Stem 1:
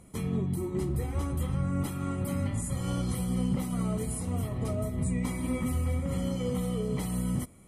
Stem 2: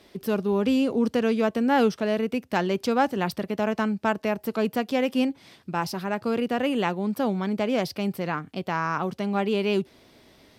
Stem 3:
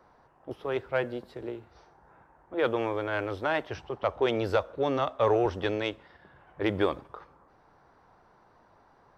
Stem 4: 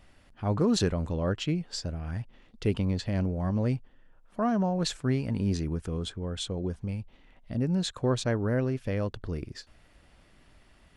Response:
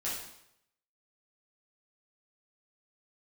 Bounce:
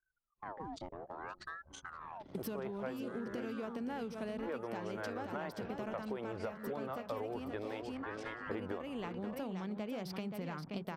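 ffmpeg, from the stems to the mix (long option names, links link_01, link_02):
-filter_complex "[0:a]acrossover=split=130|260[link_01][link_02][link_03];[link_01]acompressor=threshold=-41dB:ratio=4[link_04];[link_02]acompressor=threshold=-45dB:ratio=4[link_05];[link_03]acompressor=threshold=-38dB:ratio=4[link_06];[link_04][link_05][link_06]amix=inputs=3:normalize=0,adelay=500,volume=-13.5dB[link_07];[1:a]equalizer=frequency=160:width=3.3:gain=5.5,acompressor=threshold=-34dB:ratio=3,adelay=2200,volume=0dB,asplit=3[link_08][link_09][link_10];[link_08]atrim=end=7.87,asetpts=PTS-STARTPTS,afade=type=out:start_time=7.866:duration=0.004:curve=hsin[link_11];[link_09]atrim=start=7.87:end=8.51,asetpts=PTS-STARTPTS,volume=0[link_12];[link_10]atrim=start=8.51,asetpts=PTS-STARTPTS,afade=type=in:duration=0.004:curve=hsin[link_13];[link_11][link_12][link_13]concat=n=3:v=0:a=1,asplit=2[link_14][link_15];[link_15]volume=-7.5dB[link_16];[2:a]lowpass=2000,adelay=1900,volume=-2dB,asplit=2[link_17][link_18];[link_18]volume=-13dB[link_19];[3:a]acompressor=threshold=-33dB:ratio=3,highshelf=frequency=8300:gain=-11.5,aeval=exprs='val(0)*sin(2*PI*1000*n/s+1000*0.55/0.6*sin(2*PI*0.6*n/s))':channel_layout=same,volume=-8.5dB,asplit=3[link_20][link_21][link_22];[link_21]volume=-16dB[link_23];[link_22]apad=whole_len=360724[link_24];[link_07][link_24]sidechaincompress=threshold=-57dB:ratio=12:attack=16:release=184[link_25];[link_16][link_19][link_23]amix=inputs=3:normalize=0,aecho=0:1:527|1054|1581:1|0.19|0.0361[link_26];[link_25][link_14][link_17][link_20][link_26]amix=inputs=5:normalize=0,equalizer=frequency=85:width=7.6:gain=-4,anlmdn=0.00631,acompressor=threshold=-37dB:ratio=10"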